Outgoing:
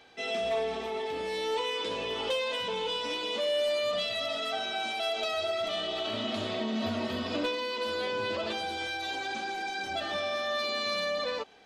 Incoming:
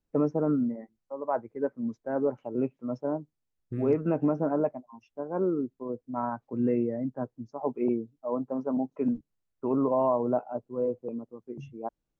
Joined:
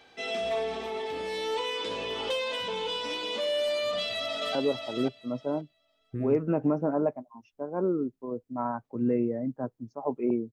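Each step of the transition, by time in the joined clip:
outgoing
3.88–4.55 echo throw 0.53 s, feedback 15%, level -6 dB
4.55 switch to incoming from 2.13 s

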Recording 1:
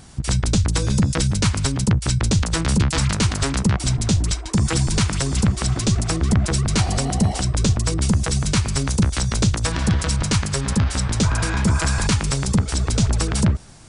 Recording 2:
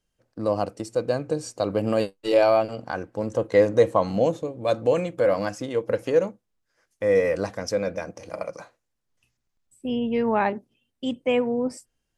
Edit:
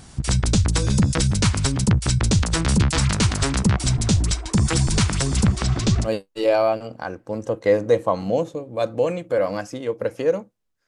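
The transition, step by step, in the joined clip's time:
recording 1
5.58–6.09 LPF 5900 Hz 12 dB/oct
6.06 switch to recording 2 from 1.94 s, crossfade 0.06 s

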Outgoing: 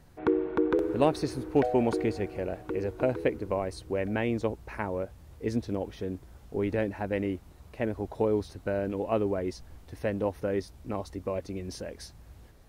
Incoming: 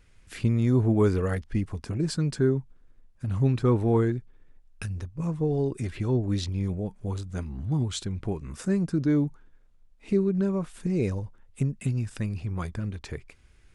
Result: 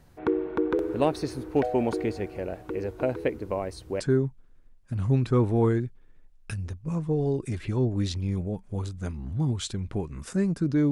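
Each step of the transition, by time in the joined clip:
outgoing
4 switch to incoming from 2.32 s

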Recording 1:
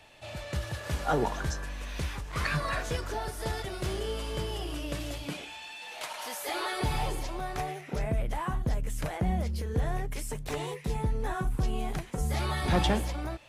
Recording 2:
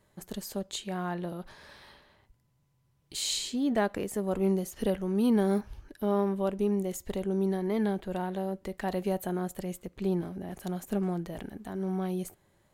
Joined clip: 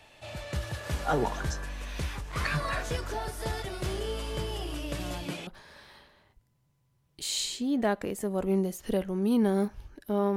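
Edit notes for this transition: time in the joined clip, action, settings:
recording 1
4.99 add recording 2 from 0.92 s 0.48 s -9 dB
5.47 switch to recording 2 from 1.4 s

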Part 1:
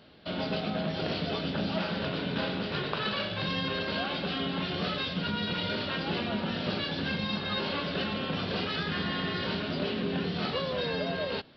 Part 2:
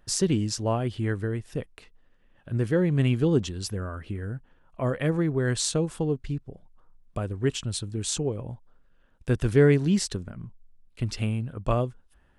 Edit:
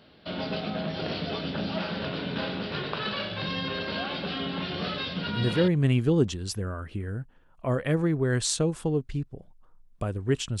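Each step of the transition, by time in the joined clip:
part 1
5.51 switch to part 2 from 2.66 s, crossfade 0.34 s logarithmic

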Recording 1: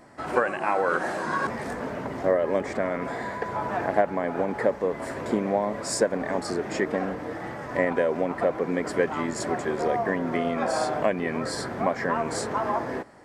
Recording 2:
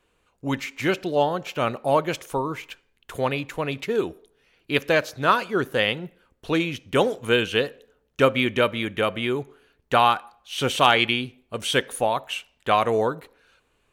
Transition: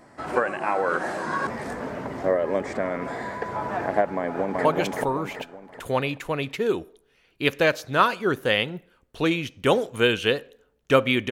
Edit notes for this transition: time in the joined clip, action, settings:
recording 1
4.16–4.65 echo throw 0.38 s, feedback 40%, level -1 dB
4.65 switch to recording 2 from 1.94 s

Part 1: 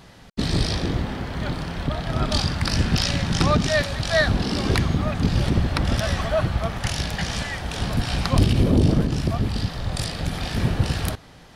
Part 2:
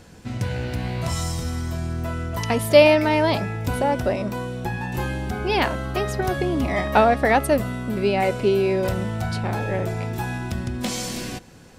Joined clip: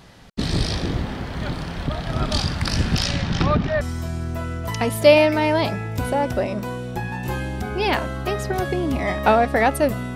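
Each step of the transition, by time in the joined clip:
part 1
3.07–3.81 LPF 9000 Hz -> 1400 Hz
3.81 switch to part 2 from 1.5 s

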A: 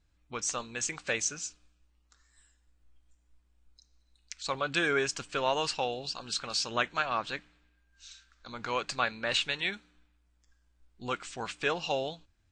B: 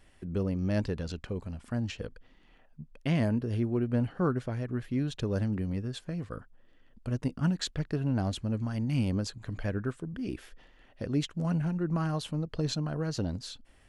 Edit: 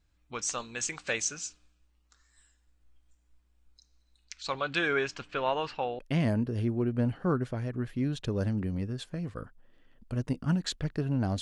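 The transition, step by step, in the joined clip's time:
A
4.24–5.99 LPF 7100 Hz -> 1700 Hz
5.99 switch to B from 2.94 s

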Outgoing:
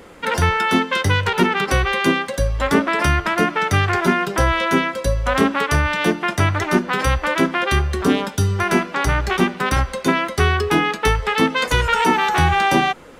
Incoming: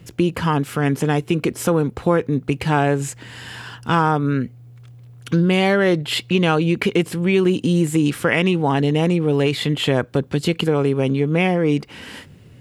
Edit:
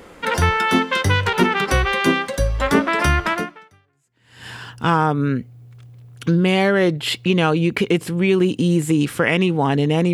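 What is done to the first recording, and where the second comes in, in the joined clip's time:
outgoing
3.9 switch to incoming from 2.95 s, crossfade 1.14 s exponential

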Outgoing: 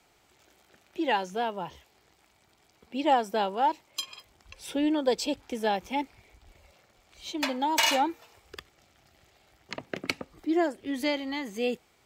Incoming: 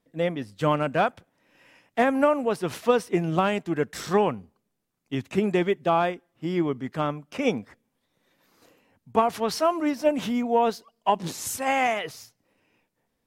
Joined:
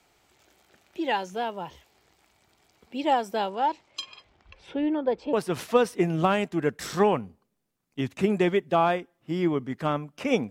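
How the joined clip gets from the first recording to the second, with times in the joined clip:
outgoing
3.49–5.33 LPF 8700 Hz -> 1300 Hz
5.33 switch to incoming from 2.47 s

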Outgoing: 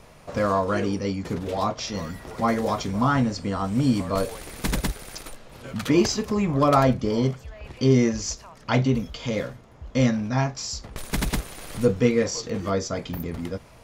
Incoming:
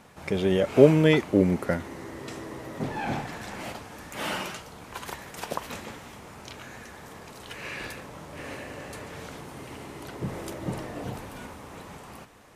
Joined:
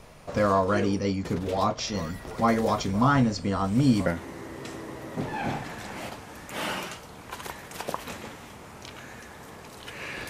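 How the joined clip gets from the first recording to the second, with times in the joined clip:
outgoing
4.06 switch to incoming from 1.69 s

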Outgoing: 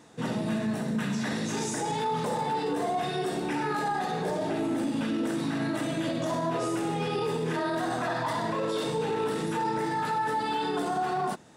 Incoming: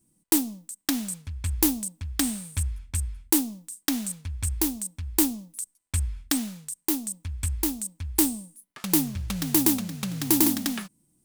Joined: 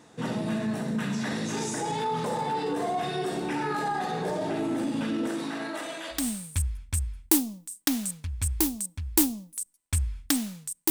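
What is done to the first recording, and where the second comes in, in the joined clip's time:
outgoing
5.28–6.28 HPF 210 Hz -> 1100 Hz
6.19 switch to incoming from 2.2 s, crossfade 0.18 s

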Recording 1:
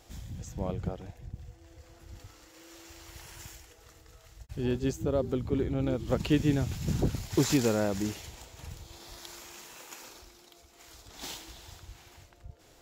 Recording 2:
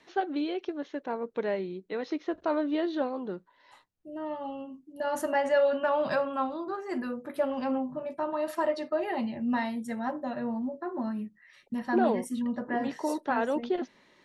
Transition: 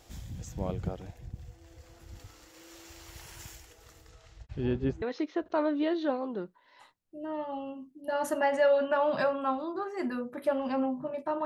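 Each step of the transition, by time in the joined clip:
recording 1
4.08–5.02 LPF 8100 Hz -> 1600 Hz
5.02 switch to recording 2 from 1.94 s

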